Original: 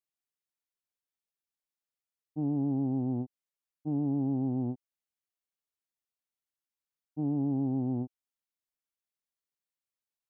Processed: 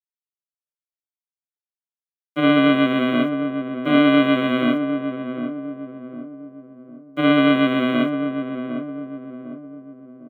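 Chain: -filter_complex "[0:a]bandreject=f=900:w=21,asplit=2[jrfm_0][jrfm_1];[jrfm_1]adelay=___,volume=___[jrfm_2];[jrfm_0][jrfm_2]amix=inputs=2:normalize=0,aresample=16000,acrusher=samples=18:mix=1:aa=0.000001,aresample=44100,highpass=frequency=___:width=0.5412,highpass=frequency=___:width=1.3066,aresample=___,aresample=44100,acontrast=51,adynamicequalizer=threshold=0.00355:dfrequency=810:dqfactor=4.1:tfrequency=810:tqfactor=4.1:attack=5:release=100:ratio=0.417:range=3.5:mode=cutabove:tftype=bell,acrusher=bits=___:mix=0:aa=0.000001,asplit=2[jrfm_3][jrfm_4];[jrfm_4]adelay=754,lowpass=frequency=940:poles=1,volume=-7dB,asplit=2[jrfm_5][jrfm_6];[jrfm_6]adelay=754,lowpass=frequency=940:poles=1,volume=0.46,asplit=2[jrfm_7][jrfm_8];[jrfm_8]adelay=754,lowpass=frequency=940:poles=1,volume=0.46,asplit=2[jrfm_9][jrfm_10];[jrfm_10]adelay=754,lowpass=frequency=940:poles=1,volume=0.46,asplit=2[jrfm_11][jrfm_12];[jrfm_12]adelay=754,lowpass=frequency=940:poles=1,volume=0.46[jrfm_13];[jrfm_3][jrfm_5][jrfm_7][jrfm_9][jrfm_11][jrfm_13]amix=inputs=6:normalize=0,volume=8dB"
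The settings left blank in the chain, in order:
21, -8.5dB, 200, 200, 8000, 10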